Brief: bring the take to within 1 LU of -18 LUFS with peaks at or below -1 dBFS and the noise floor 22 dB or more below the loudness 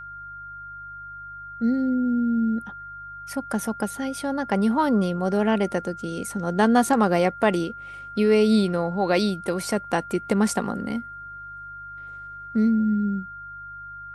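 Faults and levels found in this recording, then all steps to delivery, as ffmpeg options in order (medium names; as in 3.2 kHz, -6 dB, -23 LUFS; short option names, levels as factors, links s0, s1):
hum 50 Hz; highest harmonic 150 Hz; hum level -50 dBFS; steady tone 1.4 kHz; tone level -36 dBFS; loudness -23.5 LUFS; peak level -7.0 dBFS; loudness target -18.0 LUFS
-> -af "bandreject=f=50:t=h:w=4,bandreject=f=100:t=h:w=4,bandreject=f=150:t=h:w=4"
-af "bandreject=f=1400:w=30"
-af "volume=1.88"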